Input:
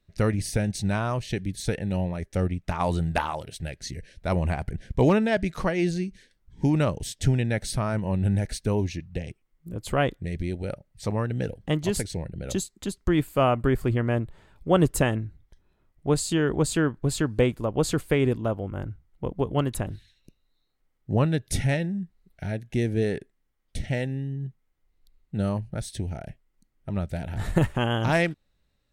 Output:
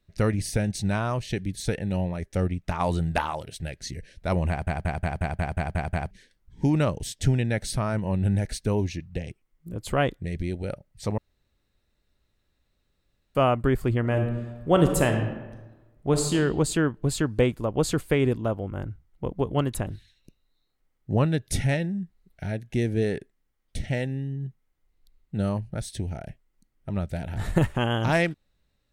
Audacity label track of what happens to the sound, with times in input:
4.490000	4.490000	stutter in place 0.18 s, 9 plays
11.180000	13.350000	fill with room tone
14.000000	16.340000	thrown reverb, RT60 1.2 s, DRR 4.5 dB

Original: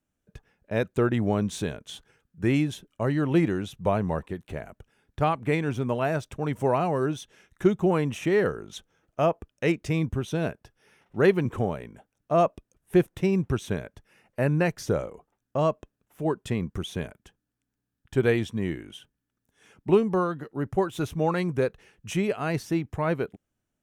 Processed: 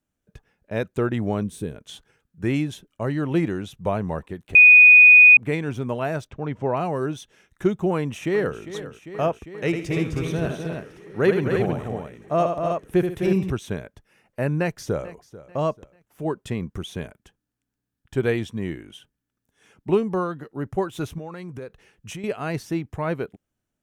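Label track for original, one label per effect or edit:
1.430000	1.760000	gain on a spectral selection 530–7,900 Hz −10 dB
4.550000	5.370000	beep over 2,480 Hz −6.5 dBFS
6.270000	6.770000	high-frequency loss of the air 180 metres
7.940000	8.580000	delay throw 400 ms, feedback 80%, level −12.5 dB
9.650000	13.500000	multi-tap delay 78/136/257/317 ms −7/−16/−6.5/−5.5 dB
14.600000	15.080000	delay throw 440 ms, feedback 35%, level −17.5 dB
21.180000	22.240000	downward compressor, threshold −32 dBFS

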